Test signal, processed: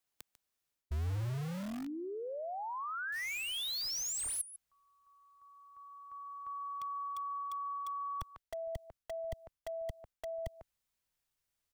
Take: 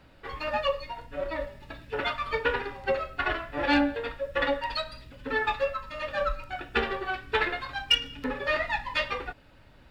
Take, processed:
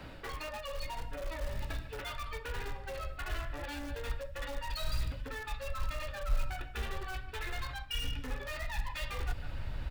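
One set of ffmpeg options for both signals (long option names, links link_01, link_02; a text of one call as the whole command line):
ffmpeg -i in.wav -filter_complex "[0:a]areverse,acompressor=threshold=-41dB:ratio=12,areverse,aecho=1:1:146:0.126,acrossover=split=150|3000[link_01][link_02][link_03];[link_02]acompressor=threshold=-47dB:ratio=6[link_04];[link_01][link_04][link_03]amix=inputs=3:normalize=0,asplit=2[link_05][link_06];[link_06]aeval=exprs='(mod(141*val(0)+1,2)-1)/141':channel_layout=same,volume=-7dB[link_07];[link_05][link_07]amix=inputs=2:normalize=0,asubboost=boost=4:cutoff=120,volume=5.5dB" out.wav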